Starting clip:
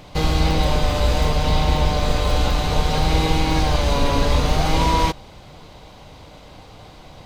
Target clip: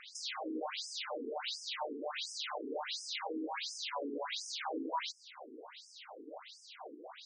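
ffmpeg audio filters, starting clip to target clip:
-filter_complex "[0:a]acrossover=split=180|1400[s0][s1][s2];[s0]acompressor=threshold=0.0631:ratio=4[s3];[s1]acompressor=threshold=0.0141:ratio=4[s4];[s2]acompressor=threshold=0.0141:ratio=4[s5];[s3][s4][s5]amix=inputs=3:normalize=0,bandreject=f=117.2:t=h:w=4,bandreject=f=234.4:t=h:w=4,bandreject=f=351.6:t=h:w=4,bandreject=f=468.8:t=h:w=4,bandreject=f=586:t=h:w=4,bandreject=f=703.2:t=h:w=4,bandreject=f=820.4:t=h:w=4,bandreject=f=937.6:t=h:w=4,bandreject=f=1054.8:t=h:w=4,bandreject=f=1172:t=h:w=4,bandreject=f=1289.2:t=h:w=4,bandreject=f=1406.4:t=h:w=4,bandreject=f=1523.6:t=h:w=4,bandreject=f=1640.8:t=h:w=4,bandreject=f=1758:t=h:w=4,bandreject=f=1875.2:t=h:w=4,bandreject=f=1992.4:t=h:w=4,bandreject=f=2109.6:t=h:w=4,bandreject=f=2226.8:t=h:w=4,bandreject=f=2344:t=h:w=4,bandreject=f=2461.2:t=h:w=4,bandreject=f=2578.4:t=h:w=4,bandreject=f=2695.6:t=h:w=4,bandreject=f=2812.8:t=h:w=4,bandreject=f=2930:t=h:w=4,bandreject=f=3047.2:t=h:w=4,afftfilt=real='re*between(b*sr/1024,310*pow(7100/310,0.5+0.5*sin(2*PI*1.4*pts/sr))/1.41,310*pow(7100/310,0.5+0.5*sin(2*PI*1.4*pts/sr))*1.41)':imag='im*between(b*sr/1024,310*pow(7100/310,0.5+0.5*sin(2*PI*1.4*pts/sr))/1.41,310*pow(7100/310,0.5+0.5*sin(2*PI*1.4*pts/sr))*1.41)':win_size=1024:overlap=0.75,volume=1.19"

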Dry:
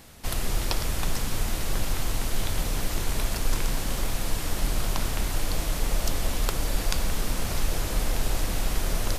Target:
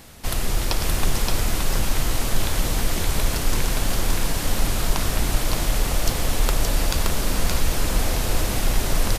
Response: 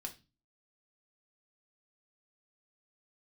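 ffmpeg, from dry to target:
-af "acontrast=74,aecho=1:1:572:0.708,volume=0.75"

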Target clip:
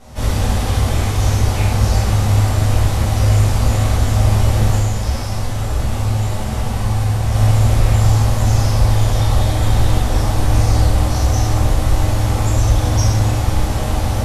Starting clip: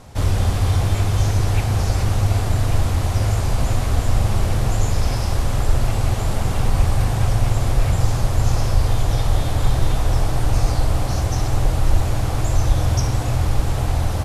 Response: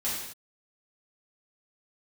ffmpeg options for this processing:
-filter_complex "[0:a]asplit=3[s0][s1][s2];[s0]afade=t=out:st=4.77:d=0.02[s3];[s1]flanger=delay=7.6:depth=8.3:regen=43:speed=1.3:shape=triangular,afade=t=in:st=4.77:d=0.02,afade=t=out:st=7.31:d=0.02[s4];[s2]afade=t=in:st=7.31:d=0.02[s5];[s3][s4][s5]amix=inputs=3:normalize=0[s6];[1:a]atrim=start_sample=2205,atrim=end_sample=6174[s7];[s6][s7]afir=irnorm=-1:irlink=0,volume=0.794"

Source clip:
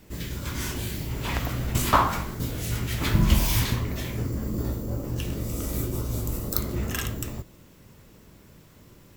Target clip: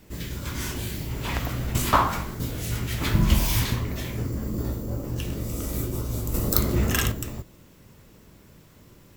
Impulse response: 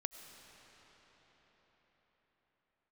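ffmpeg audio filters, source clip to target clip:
-filter_complex "[0:a]asettb=1/sr,asplit=3[s0][s1][s2];[s0]atrim=end=6.344[s3];[s1]atrim=start=6.34:end=7.12,asetpts=PTS-STARTPTS,afade=t=in:d=0.004:c=qsin,afade=t=out:st=0.776:d=0.004:c=qsin,acontrast=55[s4];[s2]atrim=start=7.116[s5];[s3][s4]acrossfade=d=0.004:c1=hsin:c2=qsin[s6];[s6][s5]acrossfade=d=0.004:c1=qsin:c2=hsin"

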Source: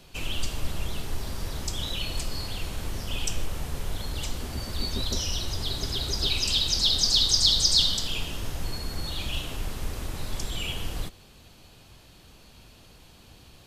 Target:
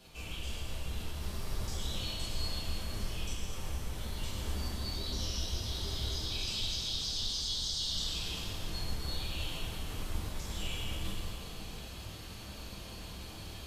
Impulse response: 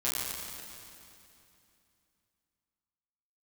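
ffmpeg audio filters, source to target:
-filter_complex "[0:a]areverse,acompressor=threshold=0.00891:ratio=5,areverse,flanger=delay=7.4:depth=8.1:regen=-41:speed=1.4:shape=sinusoidal[s0];[1:a]atrim=start_sample=2205[s1];[s0][s1]afir=irnorm=-1:irlink=0,volume=1.26"

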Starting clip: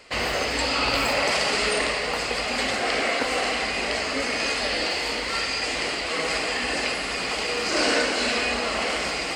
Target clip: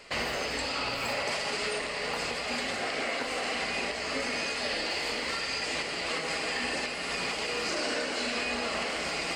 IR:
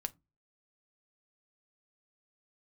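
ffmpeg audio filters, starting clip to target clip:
-filter_complex "[0:a]alimiter=limit=0.0944:level=0:latency=1:release=466[s0];[1:a]atrim=start_sample=2205[s1];[s0][s1]afir=irnorm=-1:irlink=0"

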